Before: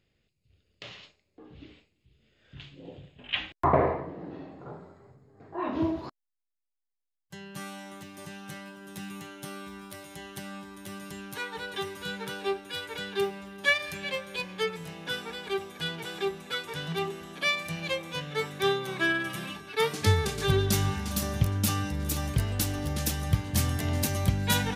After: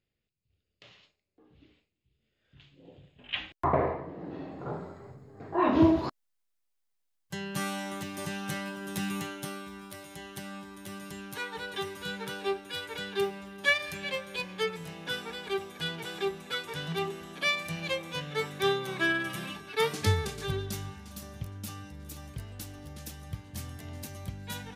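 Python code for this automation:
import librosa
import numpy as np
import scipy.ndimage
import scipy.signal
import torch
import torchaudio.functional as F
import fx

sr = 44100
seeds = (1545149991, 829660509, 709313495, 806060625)

y = fx.gain(x, sr, db=fx.line((2.6, -11.0), (3.33, -3.5), (4.0, -3.5), (4.75, 7.0), (9.21, 7.0), (9.65, -1.0), (19.95, -1.0), (20.95, -13.5)))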